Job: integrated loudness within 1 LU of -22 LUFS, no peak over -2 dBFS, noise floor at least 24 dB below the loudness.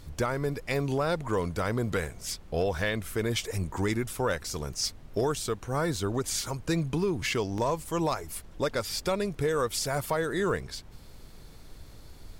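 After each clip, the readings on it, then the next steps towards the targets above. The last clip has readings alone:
dropouts 2; longest dropout 1.9 ms; noise floor -49 dBFS; noise floor target -54 dBFS; loudness -30.0 LUFS; peak level -18.0 dBFS; loudness target -22.0 LUFS
-> interpolate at 5.96/7.58 s, 1.9 ms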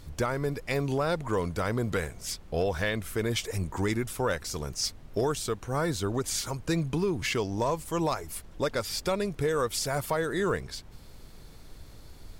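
dropouts 0; noise floor -49 dBFS; noise floor target -54 dBFS
-> noise print and reduce 6 dB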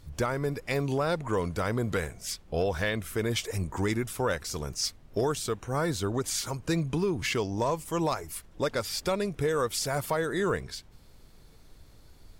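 noise floor -55 dBFS; loudness -30.0 LUFS; peak level -18.0 dBFS; loudness target -22.0 LUFS
-> trim +8 dB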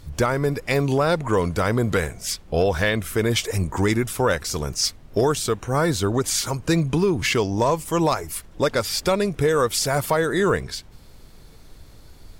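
loudness -22.0 LUFS; peak level -10.0 dBFS; noise floor -47 dBFS

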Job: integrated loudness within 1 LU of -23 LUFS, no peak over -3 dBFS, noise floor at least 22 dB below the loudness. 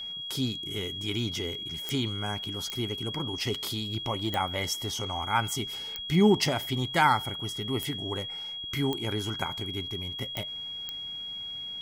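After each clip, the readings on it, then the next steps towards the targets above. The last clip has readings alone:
clicks found 8; steady tone 3.3 kHz; tone level -35 dBFS; loudness -30.0 LUFS; peak level -9.5 dBFS; loudness target -23.0 LUFS
-> de-click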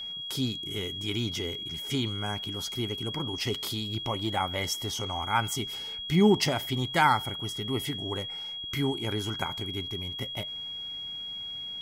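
clicks found 0; steady tone 3.3 kHz; tone level -35 dBFS
-> band-stop 3.3 kHz, Q 30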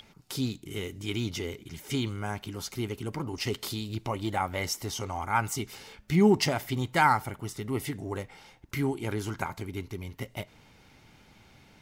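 steady tone not found; loudness -31.0 LUFS; peak level -9.5 dBFS; loudness target -23.0 LUFS
-> trim +8 dB; peak limiter -3 dBFS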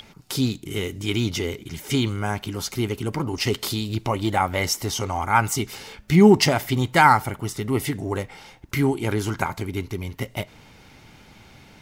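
loudness -23.0 LUFS; peak level -3.0 dBFS; noise floor -50 dBFS

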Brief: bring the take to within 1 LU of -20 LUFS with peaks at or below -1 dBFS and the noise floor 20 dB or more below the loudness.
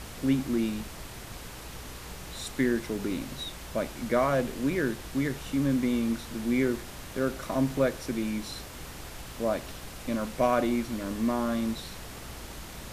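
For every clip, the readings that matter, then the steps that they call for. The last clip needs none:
hum 60 Hz; highest harmonic 180 Hz; hum level -47 dBFS; noise floor -43 dBFS; noise floor target -50 dBFS; loudness -30.0 LUFS; peak level -12.0 dBFS; loudness target -20.0 LUFS
-> de-hum 60 Hz, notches 3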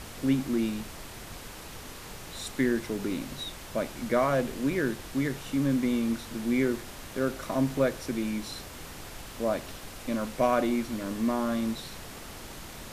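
hum not found; noise floor -44 dBFS; noise floor target -50 dBFS
-> noise print and reduce 6 dB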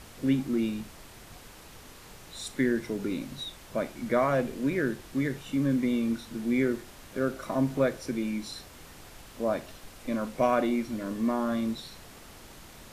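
noise floor -50 dBFS; loudness -30.0 LUFS; peak level -12.5 dBFS; loudness target -20.0 LUFS
-> trim +10 dB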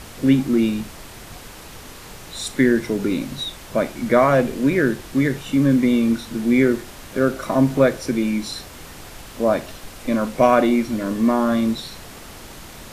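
loudness -20.0 LUFS; peak level -2.5 dBFS; noise floor -40 dBFS

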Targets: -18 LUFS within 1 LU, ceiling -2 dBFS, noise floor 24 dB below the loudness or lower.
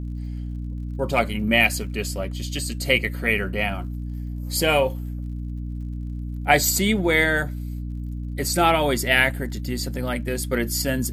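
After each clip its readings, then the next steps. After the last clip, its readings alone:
tick rate 53 per s; hum 60 Hz; highest harmonic 300 Hz; hum level -27 dBFS; loudness -23.0 LUFS; peak level -3.0 dBFS; loudness target -18.0 LUFS
-> de-click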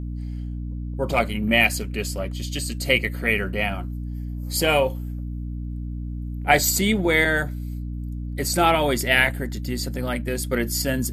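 tick rate 0.18 per s; hum 60 Hz; highest harmonic 300 Hz; hum level -27 dBFS
-> hum notches 60/120/180/240/300 Hz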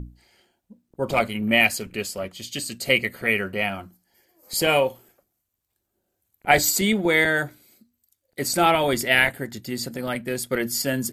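hum not found; loudness -22.5 LUFS; peak level -3.5 dBFS; loudness target -18.0 LUFS
-> trim +4.5 dB; peak limiter -2 dBFS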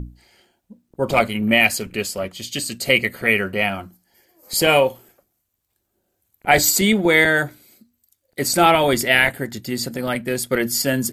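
loudness -18.5 LUFS; peak level -2.0 dBFS; noise floor -74 dBFS

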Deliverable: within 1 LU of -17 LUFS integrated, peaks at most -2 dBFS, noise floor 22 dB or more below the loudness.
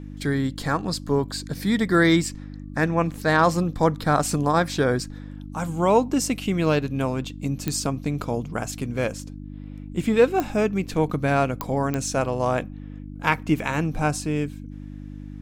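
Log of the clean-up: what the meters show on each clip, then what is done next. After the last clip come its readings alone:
clicks found 4; hum 50 Hz; highest harmonic 300 Hz; hum level -34 dBFS; loudness -23.5 LUFS; peak level -5.0 dBFS; loudness target -17.0 LUFS
-> de-click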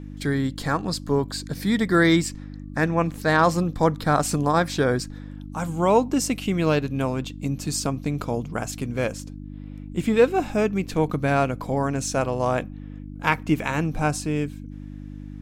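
clicks found 0; hum 50 Hz; highest harmonic 300 Hz; hum level -34 dBFS
-> de-hum 50 Hz, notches 6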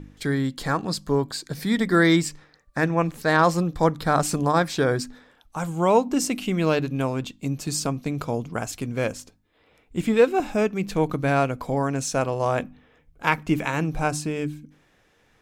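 hum not found; loudness -24.0 LUFS; peak level -4.5 dBFS; loudness target -17.0 LUFS
-> trim +7 dB; peak limiter -2 dBFS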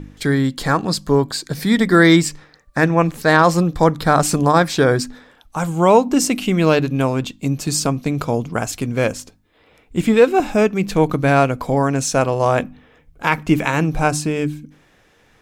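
loudness -17.5 LUFS; peak level -2.0 dBFS; noise floor -55 dBFS

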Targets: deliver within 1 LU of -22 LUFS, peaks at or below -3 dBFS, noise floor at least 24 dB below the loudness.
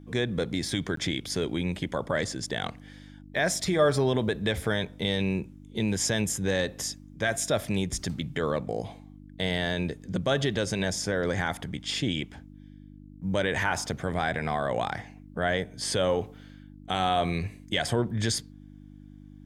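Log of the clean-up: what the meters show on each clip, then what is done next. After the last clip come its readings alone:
dropouts 1; longest dropout 13 ms; hum 50 Hz; highest harmonic 300 Hz; hum level -46 dBFS; loudness -29.0 LUFS; peak level -11.5 dBFS; loudness target -22.0 LUFS
-> interpolate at 0.96 s, 13 ms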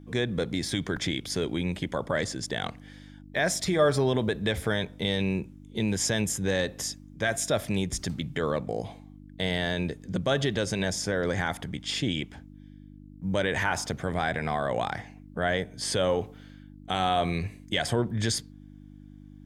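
dropouts 0; hum 50 Hz; highest harmonic 300 Hz; hum level -46 dBFS
-> de-hum 50 Hz, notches 6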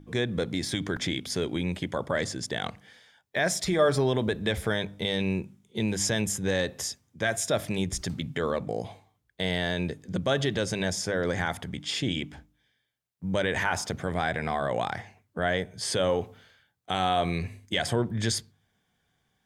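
hum not found; loudness -29.0 LUFS; peak level -11.5 dBFS; loudness target -22.0 LUFS
-> trim +7 dB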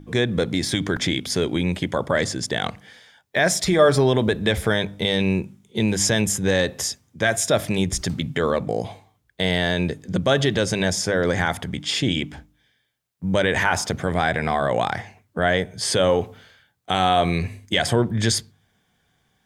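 loudness -22.0 LUFS; peak level -4.5 dBFS; noise floor -68 dBFS

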